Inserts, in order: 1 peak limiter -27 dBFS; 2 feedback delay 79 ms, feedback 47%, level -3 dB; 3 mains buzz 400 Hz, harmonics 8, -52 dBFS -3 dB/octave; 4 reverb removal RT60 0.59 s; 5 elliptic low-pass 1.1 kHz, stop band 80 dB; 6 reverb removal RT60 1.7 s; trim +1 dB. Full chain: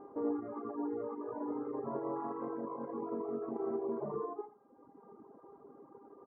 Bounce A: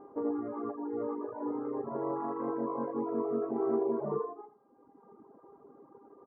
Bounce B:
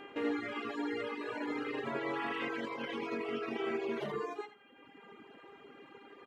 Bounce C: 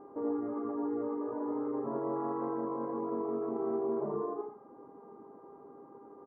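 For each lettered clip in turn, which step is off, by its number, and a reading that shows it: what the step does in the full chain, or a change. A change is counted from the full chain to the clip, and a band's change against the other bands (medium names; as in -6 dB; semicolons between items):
1, mean gain reduction 2.5 dB; 5, 1 kHz band +1.5 dB; 6, crest factor change -3.5 dB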